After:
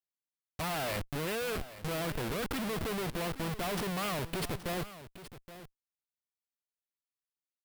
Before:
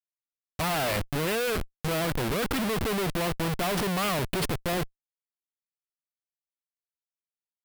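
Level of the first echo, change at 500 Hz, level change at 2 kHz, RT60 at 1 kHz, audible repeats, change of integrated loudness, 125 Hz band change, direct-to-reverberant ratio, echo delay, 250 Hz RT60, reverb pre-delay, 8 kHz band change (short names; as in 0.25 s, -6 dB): -14.5 dB, -7.0 dB, -7.0 dB, none, 1, -7.0 dB, -7.0 dB, none, 0.823 s, none, none, -7.0 dB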